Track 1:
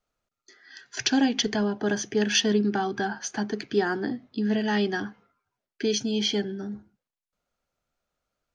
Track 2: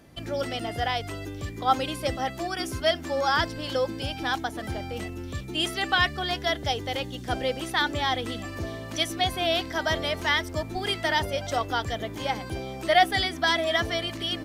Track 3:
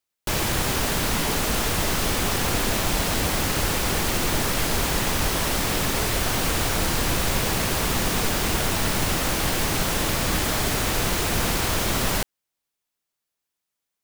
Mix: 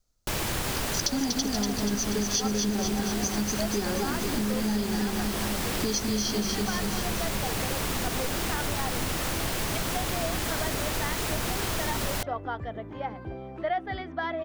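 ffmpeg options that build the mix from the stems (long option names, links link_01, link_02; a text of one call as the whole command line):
ffmpeg -i stem1.wav -i stem2.wav -i stem3.wav -filter_complex "[0:a]aemphasis=mode=reproduction:type=riaa,aexciter=amount=12.8:drive=6.9:freq=4100,volume=-4dB,asplit=2[link_01][link_02];[link_02]volume=-3.5dB[link_03];[1:a]lowpass=1500,adelay=750,volume=-4dB[link_04];[2:a]volume=-4dB[link_05];[link_03]aecho=0:1:240|480|720|960|1200|1440|1680|1920:1|0.55|0.303|0.166|0.0915|0.0503|0.0277|0.0152[link_06];[link_01][link_04][link_05][link_06]amix=inputs=4:normalize=0,acompressor=threshold=-25dB:ratio=5" out.wav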